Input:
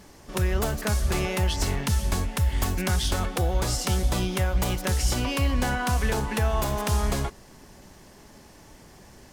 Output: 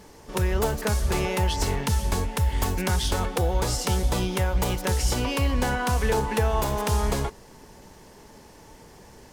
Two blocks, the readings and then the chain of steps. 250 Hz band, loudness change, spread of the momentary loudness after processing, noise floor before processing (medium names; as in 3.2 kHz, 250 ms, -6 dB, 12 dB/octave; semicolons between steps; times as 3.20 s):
+0.5 dB, +0.5 dB, 2 LU, -50 dBFS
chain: small resonant body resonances 460/900 Hz, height 8 dB, ringing for 40 ms